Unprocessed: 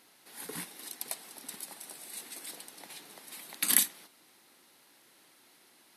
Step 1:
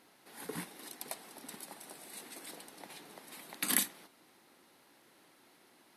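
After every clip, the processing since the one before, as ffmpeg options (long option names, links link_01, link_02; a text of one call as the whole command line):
ffmpeg -i in.wav -af "highshelf=frequency=2100:gain=-9,volume=2.5dB" out.wav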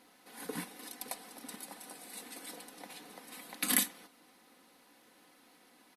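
ffmpeg -i in.wav -af "aecho=1:1:4:0.56" out.wav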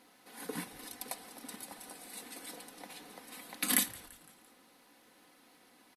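ffmpeg -i in.wav -filter_complex "[0:a]asplit=5[link_01][link_02][link_03][link_04][link_05];[link_02]adelay=170,afreqshift=-140,volume=-22dB[link_06];[link_03]adelay=340,afreqshift=-280,volume=-27.5dB[link_07];[link_04]adelay=510,afreqshift=-420,volume=-33dB[link_08];[link_05]adelay=680,afreqshift=-560,volume=-38.5dB[link_09];[link_01][link_06][link_07][link_08][link_09]amix=inputs=5:normalize=0" out.wav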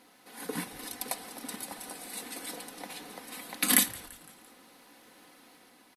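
ffmpeg -i in.wav -af "dynaudnorm=framelen=180:gausssize=7:maxgain=3.5dB,volume=3dB" out.wav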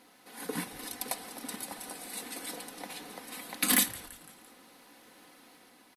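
ffmpeg -i in.wav -af "asoftclip=type=hard:threshold=-16.5dB" out.wav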